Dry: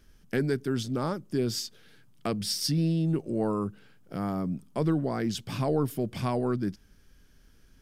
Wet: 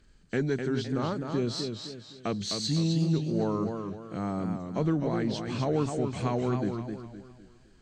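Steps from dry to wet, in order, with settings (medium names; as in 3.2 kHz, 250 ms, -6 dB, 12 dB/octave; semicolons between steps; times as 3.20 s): knee-point frequency compression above 3 kHz 1.5:1; Chebyshev shaper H 8 -38 dB, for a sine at -15.5 dBFS; modulated delay 256 ms, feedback 38%, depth 113 cents, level -6 dB; trim -1 dB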